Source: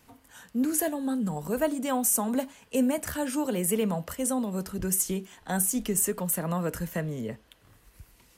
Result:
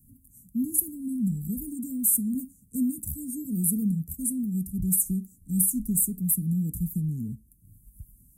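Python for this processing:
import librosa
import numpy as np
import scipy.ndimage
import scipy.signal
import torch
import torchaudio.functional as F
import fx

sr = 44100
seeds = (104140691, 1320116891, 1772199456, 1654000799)

y = scipy.signal.sosfilt(scipy.signal.cheby2(4, 60, [640.0, 3700.0], 'bandstop', fs=sr, output='sos'), x)
y = y * librosa.db_to_amplitude(5.5)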